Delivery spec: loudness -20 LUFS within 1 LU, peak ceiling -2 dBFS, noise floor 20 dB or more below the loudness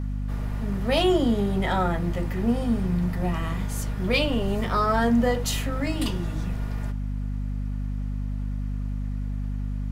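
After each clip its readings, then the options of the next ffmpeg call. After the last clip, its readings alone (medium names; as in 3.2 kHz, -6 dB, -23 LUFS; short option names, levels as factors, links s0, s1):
hum 50 Hz; highest harmonic 250 Hz; hum level -26 dBFS; loudness -26.5 LUFS; peak level -10.0 dBFS; loudness target -20.0 LUFS
-> -af "bandreject=f=50:t=h:w=6,bandreject=f=100:t=h:w=6,bandreject=f=150:t=h:w=6,bandreject=f=200:t=h:w=6,bandreject=f=250:t=h:w=6"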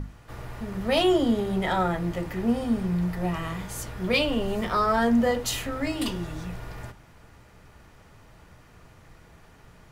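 hum not found; loudness -26.0 LUFS; peak level -10.5 dBFS; loudness target -20.0 LUFS
-> -af "volume=2"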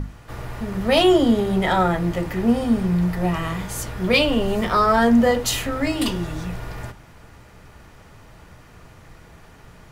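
loudness -20.0 LUFS; peak level -4.5 dBFS; noise floor -47 dBFS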